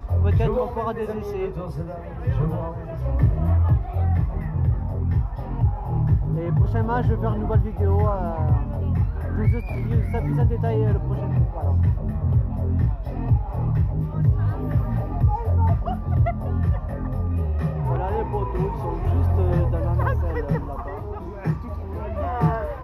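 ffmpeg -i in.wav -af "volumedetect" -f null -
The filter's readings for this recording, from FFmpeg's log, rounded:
mean_volume: -21.7 dB
max_volume: -7.6 dB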